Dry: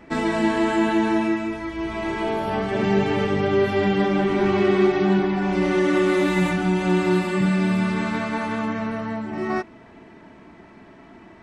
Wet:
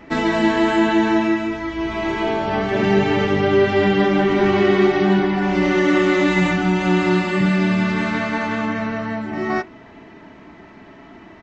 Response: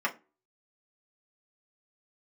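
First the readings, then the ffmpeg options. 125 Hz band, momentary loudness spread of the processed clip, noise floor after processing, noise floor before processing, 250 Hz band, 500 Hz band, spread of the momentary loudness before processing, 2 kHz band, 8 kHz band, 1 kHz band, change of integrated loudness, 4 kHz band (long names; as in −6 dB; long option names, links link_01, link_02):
+3.0 dB, 8 LU, −44 dBFS, −47 dBFS, +3.0 dB, +3.5 dB, 8 LU, +5.5 dB, can't be measured, +3.5 dB, +3.5 dB, +5.5 dB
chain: -filter_complex "[0:a]asplit=2[link_01][link_02];[1:a]atrim=start_sample=2205,asetrate=66150,aresample=44100[link_03];[link_02][link_03]afir=irnorm=-1:irlink=0,volume=-15dB[link_04];[link_01][link_04]amix=inputs=2:normalize=0,aresample=16000,aresample=44100,volume=3.5dB"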